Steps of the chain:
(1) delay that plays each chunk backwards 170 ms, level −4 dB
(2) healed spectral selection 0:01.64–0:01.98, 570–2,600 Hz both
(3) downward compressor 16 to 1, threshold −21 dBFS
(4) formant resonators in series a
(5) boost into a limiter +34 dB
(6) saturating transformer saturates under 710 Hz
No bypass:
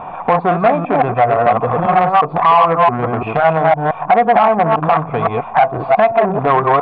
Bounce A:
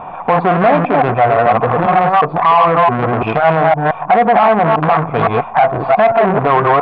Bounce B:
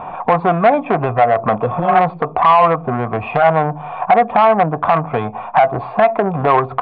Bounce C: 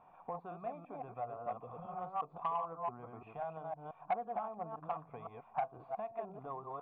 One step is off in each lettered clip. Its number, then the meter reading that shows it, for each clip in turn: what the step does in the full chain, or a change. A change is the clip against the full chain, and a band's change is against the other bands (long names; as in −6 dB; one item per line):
3, average gain reduction 7.5 dB
1, change in momentary loudness spread +2 LU
5, change in crest factor +7.5 dB